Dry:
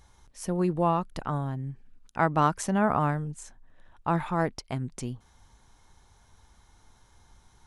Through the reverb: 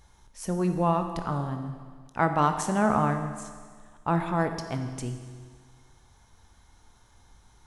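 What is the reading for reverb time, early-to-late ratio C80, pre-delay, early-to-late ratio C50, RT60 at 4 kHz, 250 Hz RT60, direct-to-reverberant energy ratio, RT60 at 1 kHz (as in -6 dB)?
1.7 s, 9.0 dB, 18 ms, 7.5 dB, 1.7 s, 1.7 s, 6.0 dB, 1.7 s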